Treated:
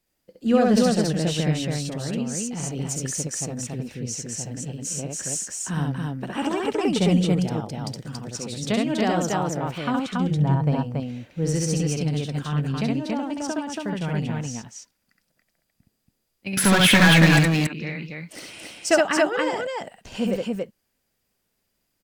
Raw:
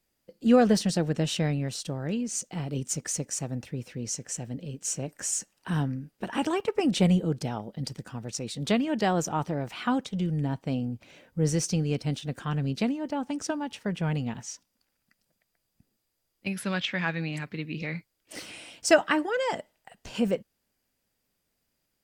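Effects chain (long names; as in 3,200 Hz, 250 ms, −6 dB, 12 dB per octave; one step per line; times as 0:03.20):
0:10.31–0:10.72: octave-band graphic EQ 125/250/500/1,000/4,000/8,000 Hz +9/−4/+4/+10/−4/−4 dB
0:16.57–0:17.39: leveller curve on the samples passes 5
loudspeakers that aren't time-aligned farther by 23 metres −2 dB, 96 metres −2 dB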